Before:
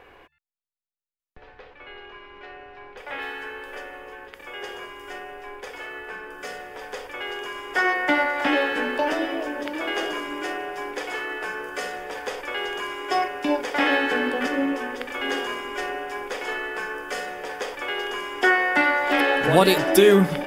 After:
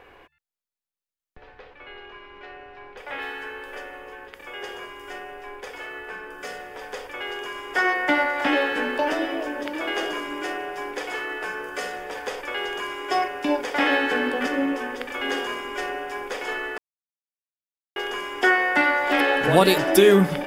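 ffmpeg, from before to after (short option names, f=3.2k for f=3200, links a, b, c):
-filter_complex "[0:a]asplit=3[a][b][c];[a]atrim=end=16.78,asetpts=PTS-STARTPTS,afade=t=out:st=16.776:d=0.004:c=hsin[d];[b]atrim=start=16.78:end=17.96,asetpts=PTS-STARTPTS,volume=0[e];[c]atrim=start=17.96,asetpts=PTS-STARTPTS,afade=t=in:d=0.004:c=hsin[f];[d][e][f]concat=n=3:v=0:a=1"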